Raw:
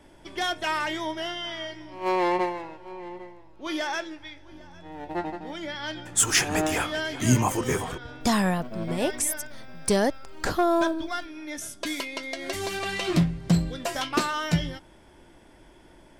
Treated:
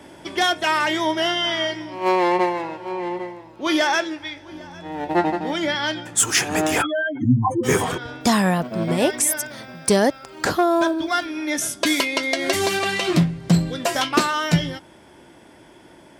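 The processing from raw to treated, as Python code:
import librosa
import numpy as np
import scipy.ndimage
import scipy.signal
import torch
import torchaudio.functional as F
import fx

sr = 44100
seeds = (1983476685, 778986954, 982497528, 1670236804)

y = fx.spec_expand(x, sr, power=3.7, at=(6.81, 7.63), fade=0.02)
y = scipy.signal.sosfilt(scipy.signal.butter(2, 110.0, 'highpass', fs=sr, output='sos'), y)
y = fx.rider(y, sr, range_db=5, speed_s=0.5)
y = y * librosa.db_to_amplitude(7.0)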